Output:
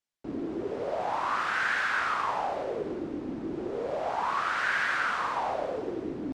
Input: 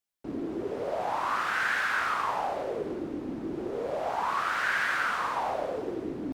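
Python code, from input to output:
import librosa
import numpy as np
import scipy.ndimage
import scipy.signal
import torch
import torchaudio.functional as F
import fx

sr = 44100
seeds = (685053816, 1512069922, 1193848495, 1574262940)

y = scipy.signal.sosfilt(scipy.signal.butter(2, 7800.0, 'lowpass', fs=sr, output='sos'), x)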